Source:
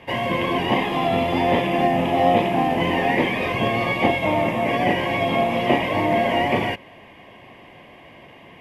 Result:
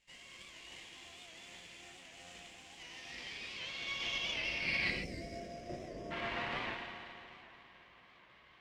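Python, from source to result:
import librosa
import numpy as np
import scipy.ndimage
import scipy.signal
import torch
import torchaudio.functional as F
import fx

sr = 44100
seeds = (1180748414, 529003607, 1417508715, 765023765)

p1 = fx.cvsd(x, sr, bps=64000)
p2 = fx.filter_sweep_bandpass(p1, sr, from_hz=7300.0, to_hz=1300.0, start_s=2.55, end_s=5.95, q=5.0)
p3 = p2 + fx.echo_alternate(p2, sr, ms=108, hz=1700.0, feedback_pct=78, wet_db=-6.5, dry=0)
p4 = np.maximum(p3, 0.0)
p5 = fx.weighting(p4, sr, curve='D')
p6 = fx.spec_box(p5, sr, start_s=4.91, length_s=1.2, low_hz=720.0, high_hz=4800.0, gain_db=-21)
p7 = fx.riaa(p6, sr, side='playback')
p8 = fx.rev_gated(p7, sr, seeds[0], gate_ms=160, shape='flat', drr_db=3.0)
p9 = fx.record_warp(p8, sr, rpm=78.0, depth_cents=100.0)
y = F.gain(torch.from_numpy(p9), -4.0).numpy()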